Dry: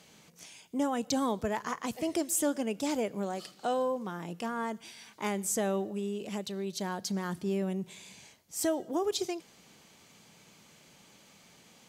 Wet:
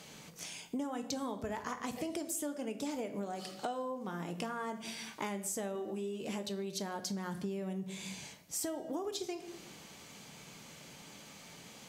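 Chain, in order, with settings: shoebox room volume 110 m³, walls mixed, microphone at 0.32 m; compressor 12:1, threshold -40 dBFS, peak gain reduction 18 dB; 5.74–6.49 doubler 13 ms -5 dB; gain +5 dB

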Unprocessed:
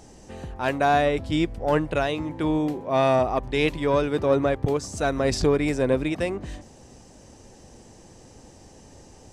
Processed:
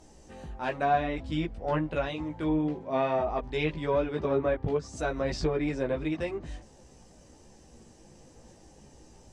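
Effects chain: chorus voices 6, 0.49 Hz, delay 16 ms, depth 3.6 ms; treble ducked by the level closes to 2900 Hz, closed at -20 dBFS; gain -3.5 dB

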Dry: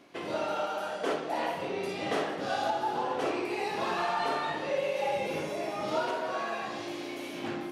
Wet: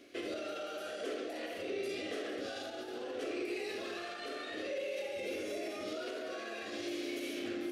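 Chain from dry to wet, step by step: limiter -30.5 dBFS, peak gain reduction 10 dB; fixed phaser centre 380 Hz, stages 4; gain +2 dB

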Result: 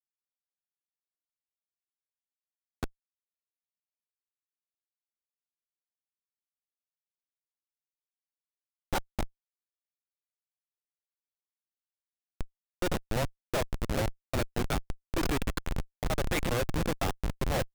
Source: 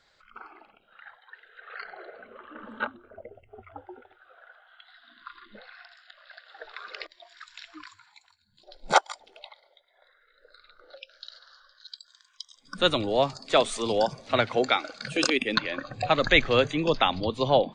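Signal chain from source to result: reverse delay 0.293 s, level -9.5 dB; Schmitt trigger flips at -19.5 dBFS; gain +2 dB

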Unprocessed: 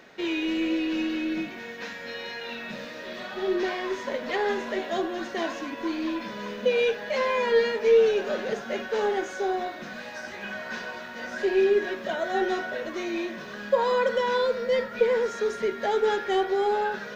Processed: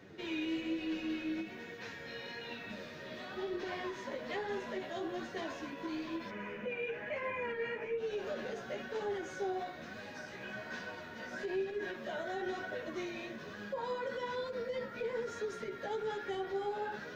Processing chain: 6.3–7.98 resonant high shelf 3100 Hz -8.5 dB, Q 3; limiter -21.5 dBFS, peak gain reduction 11 dB; band noise 91–460 Hz -46 dBFS; flange 1.1 Hz, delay 9.5 ms, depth 7.2 ms, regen +4%; ending taper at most 140 dB/s; gain -6 dB

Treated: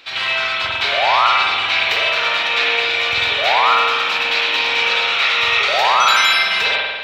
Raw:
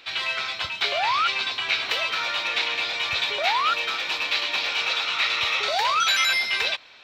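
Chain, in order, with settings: notches 50/100/150 Hz; spring tank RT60 1.5 s, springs 47 ms, chirp 75 ms, DRR -4.5 dB; gain +3.5 dB

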